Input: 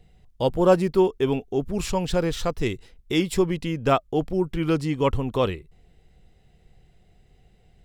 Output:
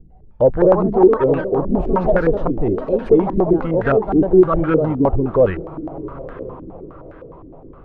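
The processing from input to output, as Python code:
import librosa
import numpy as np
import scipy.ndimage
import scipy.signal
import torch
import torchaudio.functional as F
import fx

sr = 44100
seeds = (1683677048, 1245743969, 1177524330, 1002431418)

p1 = fx.echo_pitch(x, sr, ms=266, semitones=3, count=3, db_per_echo=-6.0)
p2 = 10.0 ** (-16.5 / 20.0) * np.tanh(p1 / 10.0 ** (-16.5 / 20.0))
p3 = fx.low_shelf(p2, sr, hz=80.0, db=6.5)
p4 = p3 + fx.echo_diffused(p3, sr, ms=1046, feedback_pct=41, wet_db=-15, dry=0)
p5 = fx.mod_noise(p4, sr, seeds[0], snr_db=22, at=(3.78, 4.6), fade=0.02)
p6 = fx.filter_held_lowpass(p5, sr, hz=9.7, low_hz=290.0, high_hz=1600.0)
y = F.gain(torch.from_numpy(p6), 4.0).numpy()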